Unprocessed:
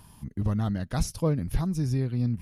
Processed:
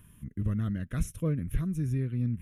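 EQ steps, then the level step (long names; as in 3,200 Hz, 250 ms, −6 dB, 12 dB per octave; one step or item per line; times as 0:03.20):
phaser with its sweep stopped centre 2,000 Hz, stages 4
−2.5 dB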